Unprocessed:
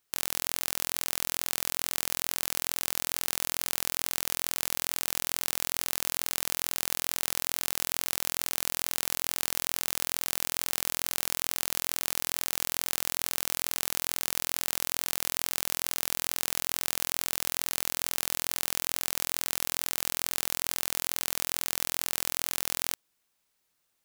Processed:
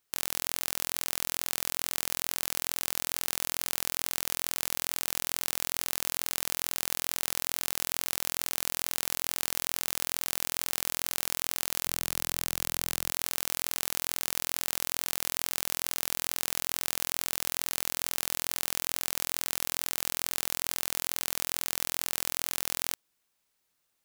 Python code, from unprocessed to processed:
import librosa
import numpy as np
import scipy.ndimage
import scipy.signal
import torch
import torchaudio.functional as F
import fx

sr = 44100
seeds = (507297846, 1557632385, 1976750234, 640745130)

y = fx.low_shelf(x, sr, hz=230.0, db=9.0, at=(11.85, 13.11))
y = y * 10.0 ** (-1.0 / 20.0)